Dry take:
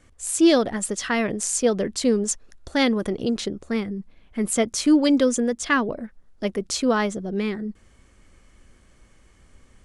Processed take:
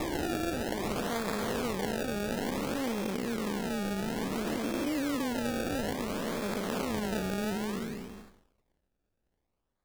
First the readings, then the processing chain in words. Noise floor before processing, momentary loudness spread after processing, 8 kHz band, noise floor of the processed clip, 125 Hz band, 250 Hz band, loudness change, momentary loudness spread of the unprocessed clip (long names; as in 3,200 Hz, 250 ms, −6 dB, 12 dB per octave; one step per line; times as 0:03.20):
−56 dBFS, 2 LU, −15.0 dB, −81 dBFS, −3.0 dB, −10.0 dB, −10.0 dB, 13 LU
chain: spectrum smeared in time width 755 ms
noise gate −50 dBFS, range −29 dB
low-shelf EQ 460 Hz −7.5 dB
downward compressor, threshold −38 dBFS, peak gain reduction 11 dB
sample-and-hold swept by an LFO 29×, swing 100% 0.58 Hz
level +8.5 dB